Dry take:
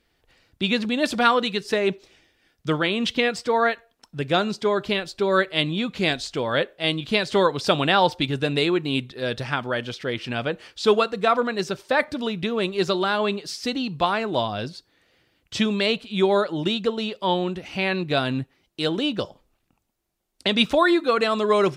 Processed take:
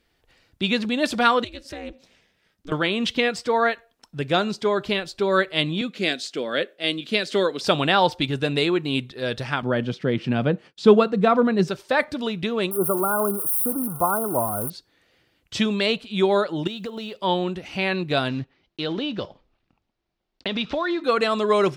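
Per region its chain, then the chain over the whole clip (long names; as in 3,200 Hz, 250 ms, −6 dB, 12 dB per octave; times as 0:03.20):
0:01.44–0:02.72: ring modulation 140 Hz + downward compressor 2 to 1, threshold −39 dBFS
0:05.81–0:07.61: high-pass filter 200 Hz 24 dB per octave + parametric band 920 Hz −11 dB 0.67 octaves + one half of a high-frequency compander decoder only
0:09.62–0:11.68: downward expander −40 dBFS + high-pass with resonance 160 Hz, resonance Q 1.8 + spectral tilt −2.5 dB per octave
0:12.71–0:14.70: spike at every zero crossing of −14 dBFS + linear-phase brick-wall band-stop 1,500–8,800 Hz
0:16.67–0:17.20: one scale factor per block 7 bits + downward compressor, threshold −28 dBFS
0:18.28–0:21.04: one scale factor per block 5 bits + low-pass filter 4,800 Hz 24 dB per octave + downward compressor 3 to 1, threshold −23 dBFS
whole clip: no processing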